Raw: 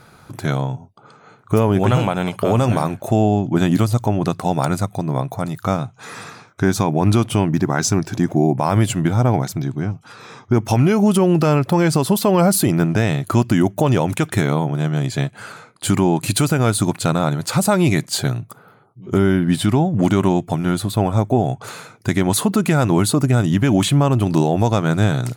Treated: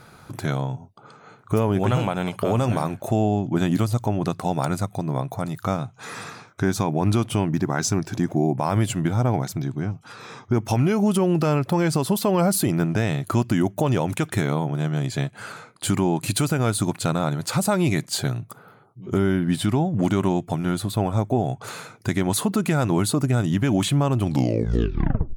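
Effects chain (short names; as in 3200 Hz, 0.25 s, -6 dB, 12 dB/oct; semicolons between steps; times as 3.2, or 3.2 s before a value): tape stop at the end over 1.16 s; in parallel at -1 dB: compressor, threshold -28 dBFS, peak gain reduction 16.5 dB; on the sum: gain -6.5 dB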